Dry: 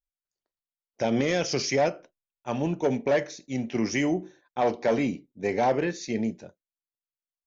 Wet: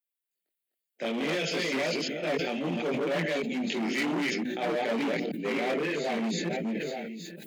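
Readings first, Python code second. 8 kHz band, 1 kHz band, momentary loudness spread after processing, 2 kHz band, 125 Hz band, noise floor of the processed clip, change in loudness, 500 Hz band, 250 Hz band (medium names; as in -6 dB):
no reading, -4.5 dB, 4 LU, +2.5 dB, -5.0 dB, under -85 dBFS, -3.0 dB, -3.5 dB, -1.5 dB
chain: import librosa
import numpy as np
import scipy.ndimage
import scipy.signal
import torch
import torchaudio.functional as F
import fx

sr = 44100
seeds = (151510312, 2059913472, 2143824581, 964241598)

p1 = fx.reverse_delay(x, sr, ms=294, wet_db=-2)
p2 = fx.rider(p1, sr, range_db=3, speed_s=0.5)
p3 = p1 + (p2 * 10.0 ** (-2.0 / 20.0))
p4 = fx.fixed_phaser(p3, sr, hz=2500.0, stages=4)
p5 = fx.chorus_voices(p4, sr, voices=4, hz=0.29, base_ms=22, depth_ms=4.3, mix_pct=50)
p6 = fx.high_shelf(p5, sr, hz=5200.0, db=10.0)
p7 = p6 + fx.echo_single(p6, sr, ms=870, db=-22.5, dry=0)
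p8 = np.clip(10.0 ** (24.0 / 20.0) * p7, -1.0, 1.0) / 10.0 ** (24.0 / 20.0)
p9 = scipy.signal.sosfilt(scipy.signal.butter(12, 150.0, 'highpass', fs=sr, output='sos'), p8)
p10 = fx.low_shelf(p9, sr, hz=490.0, db=-4.5)
y = fx.sustainer(p10, sr, db_per_s=21.0)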